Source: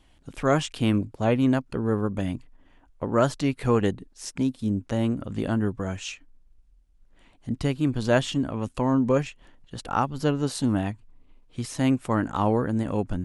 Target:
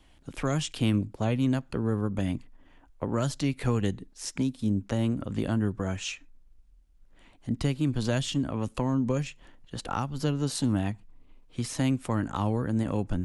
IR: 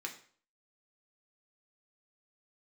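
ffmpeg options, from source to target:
-filter_complex "[0:a]acrossover=split=200|3000[link_01][link_02][link_03];[link_02]acompressor=threshold=-29dB:ratio=6[link_04];[link_01][link_04][link_03]amix=inputs=3:normalize=0,asplit=2[link_05][link_06];[1:a]atrim=start_sample=2205,afade=type=out:start_time=0.19:duration=0.01,atrim=end_sample=8820[link_07];[link_06][link_07]afir=irnorm=-1:irlink=0,volume=-18.5dB[link_08];[link_05][link_08]amix=inputs=2:normalize=0"

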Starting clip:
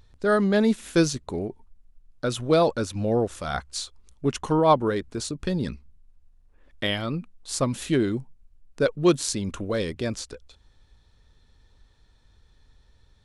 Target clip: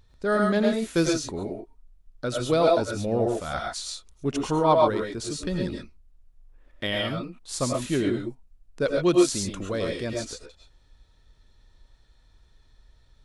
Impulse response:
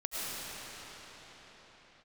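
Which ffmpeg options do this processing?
-filter_complex "[1:a]atrim=start_sample=2205,afade=type=out:start_time=0.19:duration=0.01,atrim=end_sample=8820[link_01];[0:a][link_01]afir=irnorm=-1:irlink=0"

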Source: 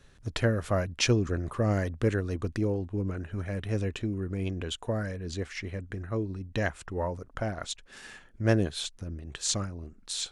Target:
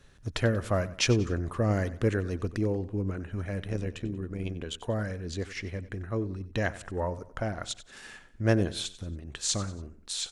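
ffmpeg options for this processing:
ffmpeg -i in.wav -filter_complex "[0:a]asettb=1/sr,asplit=3[link_01][link_02][link_03];[link_01]atrim=end=3.614[link_04];[link_02]atrim=start=3.61:end=4.75,asetpts=PTS-STARTPTS,afade=type=in:duration=0.004:curve=qsin,afade=type=out:start_time=1.136:duration=0.004:curve=qsin,tremolo=f=76:d=0.621[link_05];[link_03]atrim=start=4.746[link_06];[link_04][link_05]acrossfade=duration=0.004:curve1=hsin:curve2=qsin[link_07];[link_07][link_06]acrossfade=duration=0.004:curve1=qsin:curve2=hsin,asplit=2[link_08][link_09];[link_09]aecho=0:1:93|186|279:0.15|0.0598|0.0239[link_10];[link_08][link_10]amix=inputs=2:normalize=0" out.wav

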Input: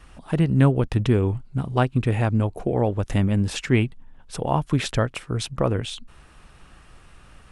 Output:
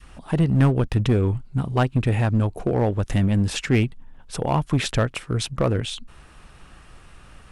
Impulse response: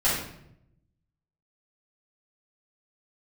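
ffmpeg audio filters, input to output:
-filter_complex "[0:a]adynamicequalizer=threshold=0.0224:dfrequency=640:dqfactor=0.77:tfrequency=640:tqfactor=0.77:attack=5:release=100:ratio=0.375:range=1.5:mode=cutabove:tftype=bell,asplit=2[link_01][link_02];[link_02]aeval=exprs='0.126*(abs(mod(val(0)/0.126+3,4)-2)-1)':channel_layout=same,volume=-7dB[link_03];[link_01][link_03]amix=inputs=2:normalize=0,volume=-1dB"

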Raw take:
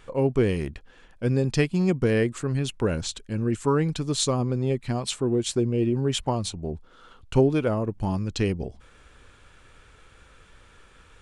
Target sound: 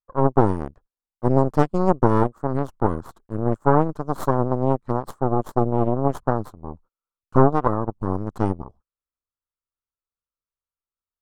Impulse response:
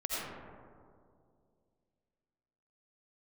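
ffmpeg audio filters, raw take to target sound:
-af "agate=range=-36dB:threshold=-42dB:ratio=16:detection=peak,aeval=exprs='0.398*(cos(1*acos(clip(val(0)/0.398,-1,1)))-cos(1*PI/2))+0.178*(cos(4*acos(clip(val(0)/0.398,-1,1)))-cos(4*PI/2))+0.0447*(cos(7*acos(clip(val(0)/0.398,-1,1)))-cos(7*PI/2))':channel_layout=same,highshelf=frequency=1700:width_type=q:width=3:gain=-13.5"

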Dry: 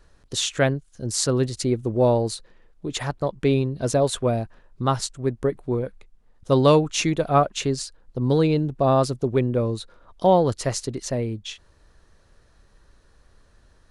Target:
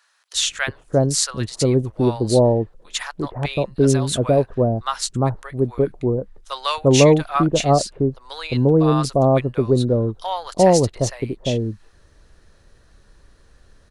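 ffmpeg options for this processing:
ffmpeg -i in.wav -filter_complex "[0:a]acrossover=split=940[link_01][link_02];[link_01]adelay=350[link_03];[link_03][link_02]amix=inputs=2:normalize=0,volume=4.5dB" out.wav

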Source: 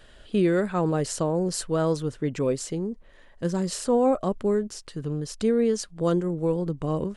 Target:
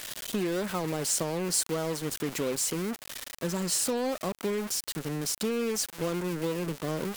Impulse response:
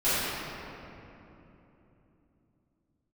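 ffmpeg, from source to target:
-af "aeval=exprs='val(0)+0.5*0.0299*sgn(val(0))':channel_layout=same,highpass=frequency=150:width=0.5412,highpass=frequency=150:width=1.3066,acompressor=threshold=-22dB:ratio=6,aemphasis=mode=production:type=cd,acrusher=bits=4:mix=0:aa=0.5,volume=-4dB"

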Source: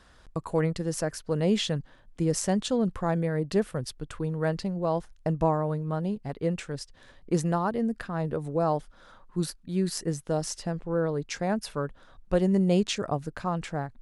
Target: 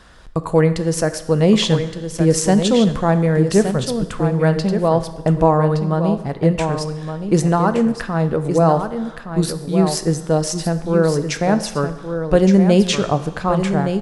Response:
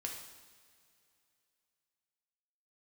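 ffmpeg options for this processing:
-filter_complex "[0:a]aecho=1:1:1168:0.398,asplit=2[link_01][link_02];[1:a]atrim=start_sample=2205,highshelf=frequency=8800:gain=-5[link_03];[link_02][link_03]afir=irnorm=-1:irlink=0,volume=-3dB[link_04];[link_01][link_04]amix=inputs=2:normalize=0,volume=7dB"

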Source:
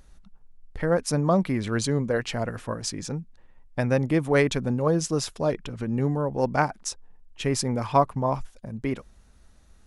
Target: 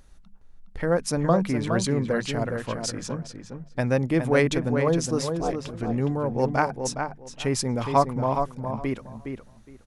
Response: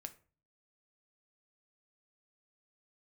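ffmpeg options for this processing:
-filter_complex "[0:a]asettb=1/sr,asplit=3[link_01][link_02][link_03];[link_01]atrim=end=5.224[link_04];[link_02]atrim=start=5.22:end=5.74,asetpts=PTS-STARTPTS,afade=type=in:duration=0.004:curve=qsin,afade=type=out:start_time=0.516:duration=0.004:curve=qsin,aeval=exprs='val(0)*sin(2*PI*120*n/s)':channel_layout=same[link_05];[link_03]atrim=start=5.736[link_06];[link_04][link_05]acrossfade=duration=0.004:curve1=hsin:curve2=qsin[link_07];[link_07][link_06]acrossfade=duration=0.004:curve1=qsin:curve2=hsin,bandreject=frequency=50:width_type=h:width=6,bandreject=frequency=100:width_type=h:width=6,bandreject=frequency=150:width_type=h:width=6,bandreject=frequency=200:width_type=h:width=6,asplit=2[link_08][link_09];[link_09]adelay=414,lowpass=frequency=2900:poles=1,volume=-6dB,asplit=2[link_10][link_11];[link_11]adelay=414,lowpass=frequency=2900:poles=1,volume=0.19,asplit=2[link_12][link_13];[link_13]adelay=414,lowpass=frequency=2900:poles=1,volume=0.19[link_14];[link_08][link_10][link_12][link_14]amix=inputs=4:normalize=0"

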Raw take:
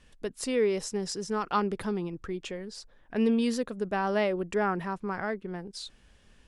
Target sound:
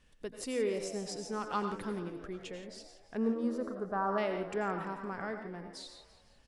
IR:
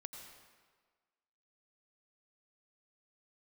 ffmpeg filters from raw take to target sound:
-filter_complex "[0:a]asettb=1/sr,asplit=3[link_01][link_02][link_03];[link_01]atrim=end=3.174[link_04];[link_02]atrim=start=3.17:end=4.18,asetpts=PTS-STARTPTS,afade=type=in:duration=0.004:curve=qsin,afade=type=out:start_time=1.006:duration=0.004:curve=qsin,highshelf=frequency=1800:width_type=q:width=3:gain=-12[link_05];[link_03]atrim=start=4.176[link_06];[link_04][link_05]acrossfade=duration=0.004:curve1=hsin:curve2=qsin[link_07];[link_07][link_06]acrossfade=duration=0.004:curve1=qsin:curve2=hsin,asplit=6[link_08][link_09][link_10][link_11][link_12][link_13];[link_09]adelay=170,afreqshift=93,volume=-15dB[link_14];[link_10]adelay=340,afreqshift=186,volume=-20.2dB[link_15];[link_11]adelay=510,afreqshift=279,volume=-25.4dB[link_16];[link_12]adelay=680,afreqshift=372,volume=-30.6dB[link_17];[link_13]adelay=850,afreqshift=465,volume=-35.8dB[link_18];[link_08][link_14][link_15][link_16][link_17][link_18]amix=inputs=6:normalize=0[link_19];[1:a]atrim=start_sample=2205,afade=type=out:start_time=0.2:duration=0.01,atrim=end_sample=9261[link_20];[link_19][link_20]afir=irnorm=-1:irlink=0,volume=-1.5dB"

